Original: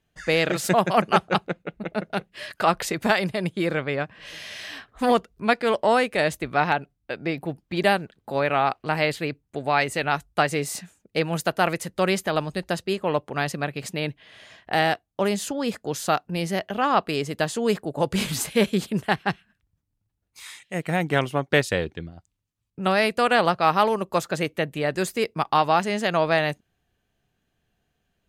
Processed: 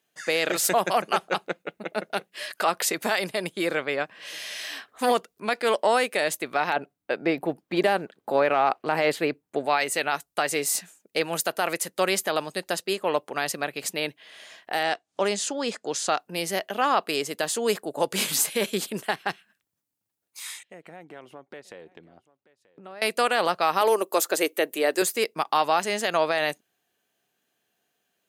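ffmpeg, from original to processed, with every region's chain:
ffmpeg -i in.wav -filter_complex "[0:a]asettb=1/sr,asplit=3[link_01][link_02][link_03];[link_01]atrim=end=6.764[link_04];[link_02]atrim=start=6.76:end=9.66,asetpts=PTS-STARTPTS,afade=type=in:duration=0.004:curve=qsin,afade=type=out:start_time=2.896:duration=0.004:curve=qsin,highshelf=frequency=2400:gain=-12,acontrast=57[link_05];[link_03]atrim=start=9.656[link_06];[link_04][link_05]acrossfade=duration=0.004:curve1=hsin:curve2=qsin[link_07];[link_07][link_06]acrossfade=duration=0.004:curve1=qsin:curve2=hsin,asettb=1/sr,asplit=3[link_08][link_09][link_10];[link_08]atrim=end=14.834[link_11];[link_09]atrim=start=14.83:end=16.18,asetpts=PTS-STARTPTS,afade=type=in:duration=0.004:curve=qsin,afade=type=out:start_time=1.346:duration=0.004:curve=qsin,lowpass=frequency=8000:width=0.5412,lowpass=frequency=8000:width=1.3066,acompressor=mode=upward:threshold=-42dB:ratio=2.5:attack=3.2:release=140:knee=2.83:detection=peak[link_12];[link_10]atrim=start=16.176[link_13];[link_11][link_12]acrossfade=duration=0.004:curve1=hsin:curve2=qsin[link_14];[link_14][link_13]acrossfade=duration=0.004:curve1=qsin:curve2=hsin,asettb=1/sr,asplit=3[link_15][link_16][link_17];[link_15]atrim=end=20.634[link_18];[link_16]atrim=start=20.63:end=23.02,asetpts=PTS-STARTPTS,afade=type=in:duration=0.004:curve=qsin,afade=type=out:start_time=2.386:duration=0.004:curve=qsin,lowpass=frequency=1100:poles=1,acompressor=threshold=-39dB:ratio=5:attack=3.2:release=140:knee=1:detection=peak,aecho=1:1:933:0.0944,atrim=end_sample=105399[link_19];[link_17]atrim=start=23.016[link_20];[link_18][link_19]acrossfade=duration=0.004:curve1=hsin:curve2=qsin[link_21];[link_21][link_20]acrossfade=duration=0.004:curve1=qsin:curve2=hsin,asettb=1/sr,asplit=3[link_22][link_23][link_24];[link_22]atrim=end=23.814[link_25];[link_23]atrim=start=23.81:end=25.02,asetpts=PTS-STARTPTS,afade=type=in:duration=0.004:curve=qsin,afade=type=out:start_time=1.206:duration=0.004:curve=qsin,highpass=frequency=340:width_type=q:width=1.8,highshelf=frequency=10000:gain=11.5[link_26];[link_24]atrim=start=25.016[link_27];[link_25][link_26]acrossfade=duration=0.004:curve1=hsin:curve2=qsin[link_28];[link_28][link_27]acrossfade=duration=0.004:curve1=qsin:curve2=hsin,highpass=320,highshelf=frequency=6200:gain=10.5,alimiter=limit=-11dB:level=0:latency=1:release=45" out.wav

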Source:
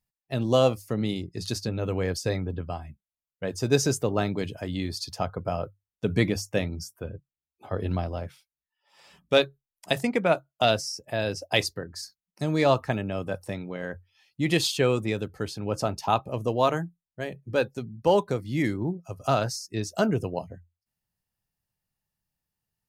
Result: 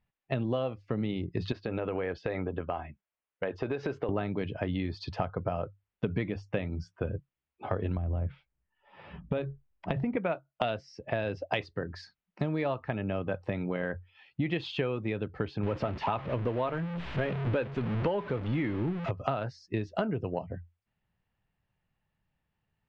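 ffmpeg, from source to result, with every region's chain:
ffmpeg -i in.wav -filter_complex "[0:a]asettb=1/sr,asplit=3[link_01][link_02][link_03];[link_01]atrim=end=1.524[link_04];[link_02]atrim=start=1.52:end=4.09,asetpts=PTS-STARTPTS,afade=type=in:duration=0.004:curve=qsin,afade=type=out:start_time=2.566:duration=0.004:curve=qsin,lowpass=6000,bass=frequency=250:gain=-12,treble=frequency=4000:gain=-9,acompressor=threshold=-32dB:ratio=6:attack=3.2:release=140:knee=1:detection=peak[link_05];[link_03]atrim=start=4.086[link_06];[link_04][link_05]acrossfade=duration=0.004:curve1=hsin:curve2=qsin[link_07];[link_07][link_06]acrossfade=duration=0.004:curve1=qsin:curve2=hsin,asettb=1/sr,asplit=3[link_08][link_09][link_10];[link_08]atrim=end=7.974[link_11];[link_09]atrim=start=7.97:end=10.17,asetpts=PTS-STARTPTS,afade=type=in:duration=0.004:curve=qsin,afade=type=out:start_time=2.196:duration=0.004:curve=qsin,aemphasis=mode=reproduction:type=riaa,acompressor=threshold=-28dB:ratio=4:attack=3.2:release=140:knee=1:detection=peak[link_12];[link_10]atrim=start=10.166[link_13];[link_11][link_12]acrossfade=duration=0.004:curve1=hsin:curve2=qsin[link_14];[link_14][link_13]acrossfade=duration=0.004:curve1=qsin:curve2=hsin,asettb=1/sr,asplit=3[link_15][link_16][link_17];[link_15]atrim=end=15.634[link_18];[link_16]atrim=start=15.63:end=19.11,asetpts=PTS-STARTPTS,afade=type=in:duration=0.004:curve=qsin,afade=type=out:start_time=3.476:duration=0.004:curve=qsin,aeval=exprs='val(0)+0.5*0.0299*sgn(val(0))':channel_layout=same,bandreject=frequency=770:width=16[link_19];[link_17]atrim=start=19.106[link_20];[link_18][link_19]acrossfade=duration=0.004:curve1=hsin:curve2=qsin[link_21];[link_21][link_20]acrossfade=duration=0.004:curve1=qsin:curve2=hsin,lowpass=frequency=3000:width=0.5412,lowpass=frequency=3000:width=1.3066,acompressor=threshold=-35dB:ratio=10,volume=7.5dB" out.wav

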